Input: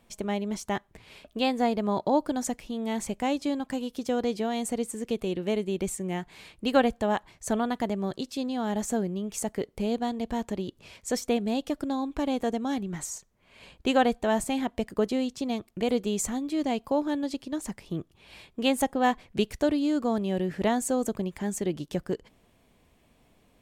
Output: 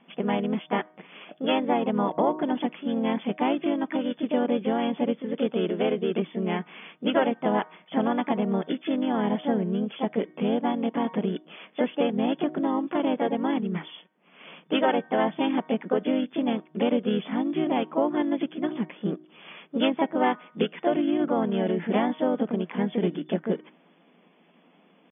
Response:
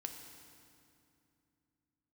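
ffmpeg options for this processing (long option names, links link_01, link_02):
-filter_complex "[0:a]bandreject=frequency=310.3:width_type=h:width=4,bandreject=frequency=620.6:width_type=h:width=4,bandreject=frequency=930.9:width_type=h:width=4,bandreject=frequency=1241.2:width_type=h:width=4,bandreject=frequency=1551.5:width_type=h:width=4,bandreject=frequency=1861.8:width_type=h:width=4,asplit=4[link_01][link_02][link_03][link_04];[link_02]asetrate=22050,aresample=44100,atempo=2,volume=-8dB[link_05];[link_03]asetrate=35002,aresample=44100,atempo=1.25992,volume=-13dB[link_06];[link_04]asetrate=52444,aresample=44100,atempo=0.840896,volume=-4dB[link_07];[link_01][link_05][link_06][link_07]amix=inputs=4:normalize=0,acompressor=threshold=-25dB:ratio=2.5,afftfilt=real='re*between(b*sr/4096,160,3500)':imag='im*between(b*sr/4096,160,3500)':win_size=4096:overlap=0.75,atempo=0.94,volume=4dB"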